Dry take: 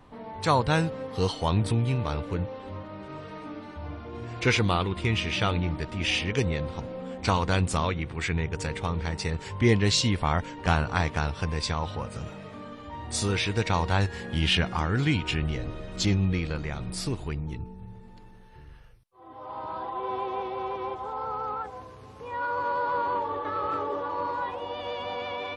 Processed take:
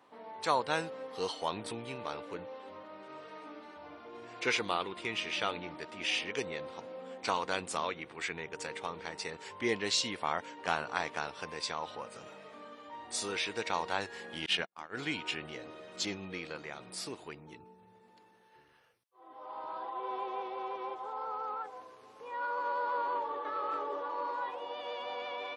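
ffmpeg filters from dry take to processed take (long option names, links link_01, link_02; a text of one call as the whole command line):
ffmpeg -i in.wav -filter_complex "[0:a]asettb=1/sr,asplit=3[link_01][link_02][link_03];[link_01]atrim=end=14.464[link_04];[link_02]atrim=start=14.46:end=14.97,asetpts=PTS-STARTPTS,afade=type=in:duration=0.004:curve=qsin,afade=type=out:start_time=0.506:duration=0.004:curve=qsin,agate=range=-49dB:threshold=-25dB:ratio=16:release=100:detection=peak[link_05];[link_03]atrim=start=14.966[link_06];[link_04][link_05]acrossfade=duration=0.004:curve1=hsin:curve2=qsin[link_07];[link_07][link_06]acrossfade=duration=0.004:curve1=qsin:curve2=hsin,highpass=380,volume=-5.5dB" out.wav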